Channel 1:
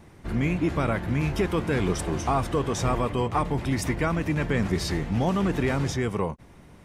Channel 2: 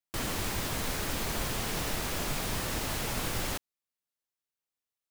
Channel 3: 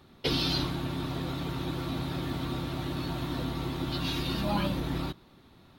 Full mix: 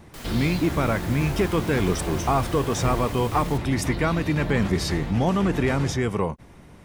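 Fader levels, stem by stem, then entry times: +2.5, -6.5, -8.0 dB; 0.00, 0.00, 0.00 s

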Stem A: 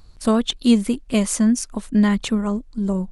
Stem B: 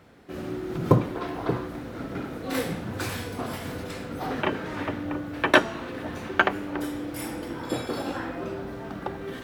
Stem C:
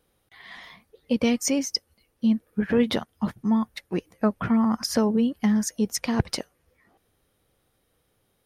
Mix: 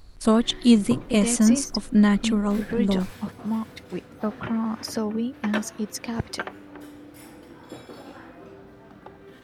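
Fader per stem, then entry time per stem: -1.0, -11.5, -5.0 dB; 0.00, 0.00, 0.00 s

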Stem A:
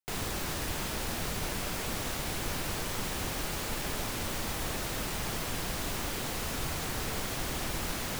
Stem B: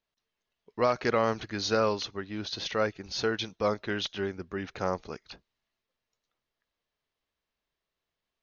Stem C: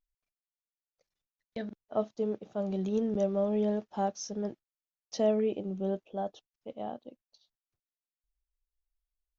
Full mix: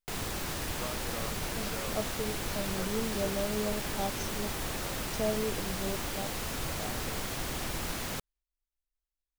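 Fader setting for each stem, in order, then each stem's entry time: -1.0, -16.5, -5.0 dB; 0.00, 0.00, 0.00 s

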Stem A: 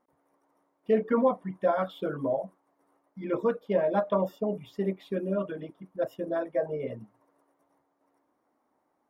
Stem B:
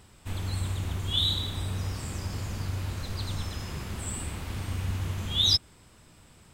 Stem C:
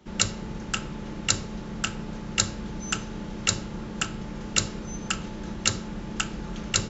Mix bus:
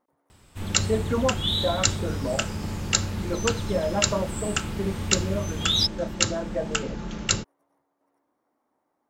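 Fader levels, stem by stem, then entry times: -1.0, 0.0, +1.0 dB; 0.00, 0.30, 0.55 s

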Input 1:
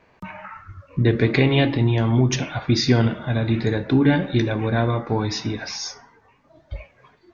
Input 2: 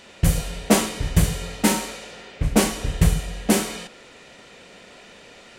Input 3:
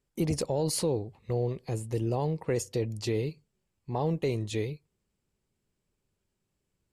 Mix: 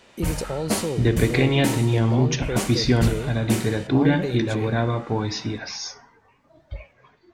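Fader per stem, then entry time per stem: -2.0, -7.5, +0.5 dB; 0.00, 0.00, 0.00 s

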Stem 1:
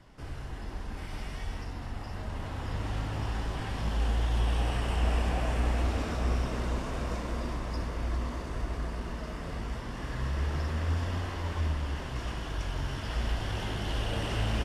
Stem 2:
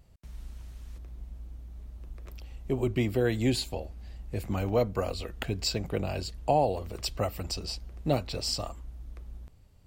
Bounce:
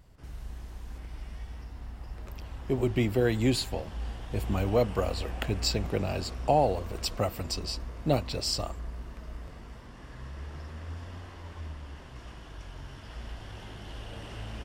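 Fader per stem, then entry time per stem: -10.0, +1.0 dB; 0.00, 0.00 s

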